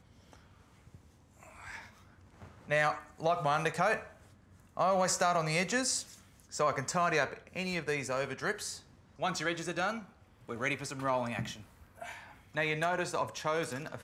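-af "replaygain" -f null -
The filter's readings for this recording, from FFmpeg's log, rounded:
track_gain = +13.0 dB
track_peak = 0.132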